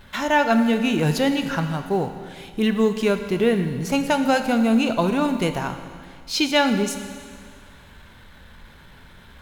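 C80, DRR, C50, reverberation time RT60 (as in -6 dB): 10.0 dB, 7.5 dB, 9.0 dB, 2.0 s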